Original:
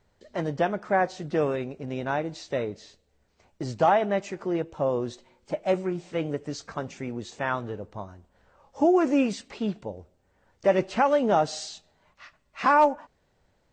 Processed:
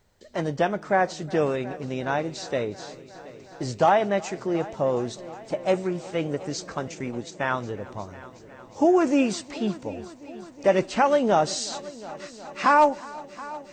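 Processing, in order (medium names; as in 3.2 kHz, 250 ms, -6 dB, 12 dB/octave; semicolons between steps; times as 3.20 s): treble shelf 5.7 kHz +10 dB; 6.88–7.44 s: transient shaper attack +1 dB, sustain -12 dB; multi-head delay 363 ms, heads first and second, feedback 70%, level -21.5 dB; trim +1.5 dB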